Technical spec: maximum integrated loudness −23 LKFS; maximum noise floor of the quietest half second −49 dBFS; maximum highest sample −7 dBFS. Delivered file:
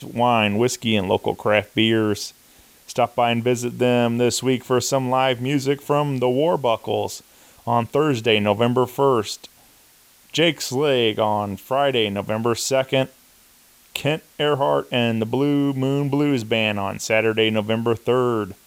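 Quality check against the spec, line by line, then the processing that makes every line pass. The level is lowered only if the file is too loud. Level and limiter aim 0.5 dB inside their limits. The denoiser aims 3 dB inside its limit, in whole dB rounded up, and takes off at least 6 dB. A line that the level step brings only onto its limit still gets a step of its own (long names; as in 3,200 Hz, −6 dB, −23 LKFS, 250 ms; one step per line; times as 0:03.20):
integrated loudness −20.5 LKFS: out of spec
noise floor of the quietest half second −53 dBFS: in spec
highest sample −2.5 dBFS: out of spec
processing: level −3 dB
brickwall limiter −7.5 dBFS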